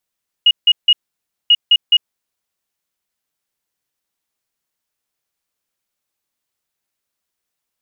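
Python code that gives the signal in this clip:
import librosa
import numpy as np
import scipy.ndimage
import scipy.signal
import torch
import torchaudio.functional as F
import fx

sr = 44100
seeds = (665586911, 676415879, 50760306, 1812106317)

y = fx.beep_pattern(sr, wave='sine', hz=2880.0, on_s=0.05, off_s=0.16, beeps=3, pause_s=0.57, groups=2, level_db=-6.0)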